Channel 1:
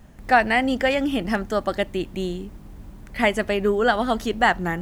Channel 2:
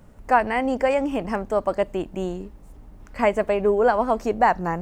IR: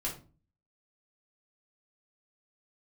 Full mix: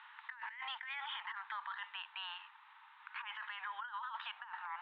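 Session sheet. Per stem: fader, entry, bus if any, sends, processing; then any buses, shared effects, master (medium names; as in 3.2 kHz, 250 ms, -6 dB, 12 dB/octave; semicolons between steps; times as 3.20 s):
-4.0 dB, 0.00 s, no send, auto duck -8 dB, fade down 1.25 s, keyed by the second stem
-4.5 dB, 0.00 s, no send, fifteen-band graphic EQ 630 Hz -4 dB, 1.6 kHz +4 dB, 4 kHz -5 dB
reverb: none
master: Chebyshev band-pass 890–3800 Hz, order 5; compressor with a negative ratio -42 dBFS, ratio -1; peak limiter -34 dBFS, peak gain reduction 12.5 dB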